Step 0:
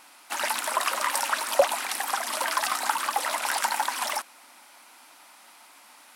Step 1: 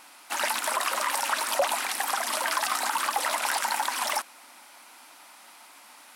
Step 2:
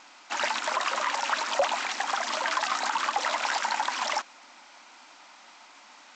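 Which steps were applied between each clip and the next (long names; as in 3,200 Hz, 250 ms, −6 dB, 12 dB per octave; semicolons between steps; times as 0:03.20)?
brickwall limiter −16.5 dBFS, peak gain reduction 9 dB; level +1.5 dB
G.722 64 kbit/s 16,000 Hz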